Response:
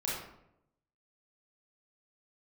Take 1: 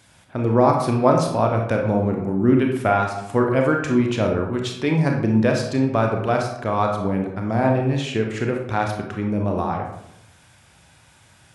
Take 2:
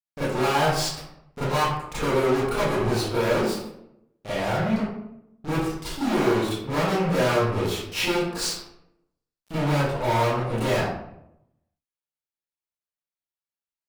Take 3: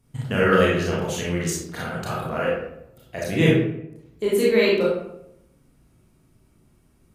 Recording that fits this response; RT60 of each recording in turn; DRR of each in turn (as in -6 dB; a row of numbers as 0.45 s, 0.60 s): 3; 0.80 s, 0.80 s, 0.80 s; 1.5 dB, -14.0 dB, -6.5 dB